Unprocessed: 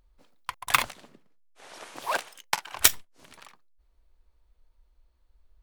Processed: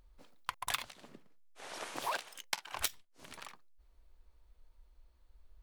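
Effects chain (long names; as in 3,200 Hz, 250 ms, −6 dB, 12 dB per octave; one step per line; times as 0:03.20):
dynamic equaliser 3,900 Hz, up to +6 dB, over −38 dBFS, Q 1
downward compressor 12 to 1, threshold −34 dBFS, peak gain reduction 24.5 dB
level +1 dB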